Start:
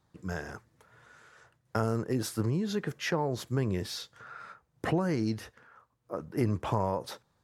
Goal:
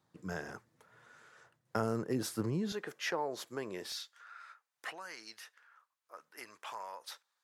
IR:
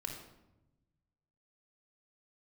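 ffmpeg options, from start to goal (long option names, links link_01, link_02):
-af "asetnsamples=nb_out_samples=441:pad=0,asendcmd='2.72 highpass f 430;3.92 highpass f 1400',highpass=140,volume=-3dB"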